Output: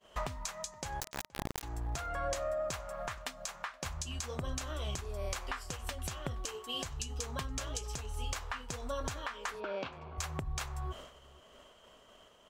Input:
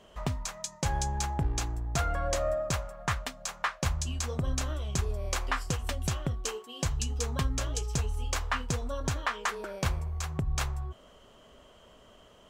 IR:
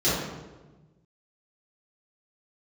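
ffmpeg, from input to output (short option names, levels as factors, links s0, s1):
-filter_complex "[0:a]agate=range=0.0224:threshold=0.00447:ratio=3:detection=peak,lowshelf=f=380:g=-8.5,acompressor=threshold=0.00708:ratio=4,alimiter=level_in=2.82:limit=0.0631:level=0:latency=1:release=357,volume=0.355,asettb=1/sr,asplit=3[s0][s1][s2];[s0]atrim=end=1.004[s3];[s1]atrim=start=1:end=1.63,asetpts=PTS-STARTPTS,afade=t=in:d=0.004:c=qsin,afade=t=out:st=0.626:d=0.004:c=qsin,acrusher=bits=4:dc=4:mix=0:aa=0.000001[s4];[s2]atrim=start=1.626[s5];[s3][s4]acrossfade=d=0.004:c1=hsin:c2=qsin[s6];[s6][s5]acrossfade=d=0.004:c1=qsin:c2=hsin,asplit=3[s7][s8][s9];[s7]afade=t=out:st=9.59:d=0.02[s10];[s8]highpass=160,equalizer=f=270:t=q:w=4:g=7,equalizer=f=1900:t=q:w=4:g=-8,equalizer=f=2700:t=q:w=4:g=4,lowpass=f=3900:w=0.5412,lowpass=f=3900:w=1.3066,afade=t=in:st=9.59:d=0.02,afade=t=out:st=10.17:d=0.02[s11];[s9]afade=t=in:st=10.17:d=0.02[s12];[s10][s11][s12]amix=inputs=3:normalize=0,asplit=2[s13][s14];[s14]adelay=472.3,volume=0.0794,highshelf=f=4000:g=-10.6[s15];[s13][s15]amix=inputs=2:normalize=0,volume=3.35"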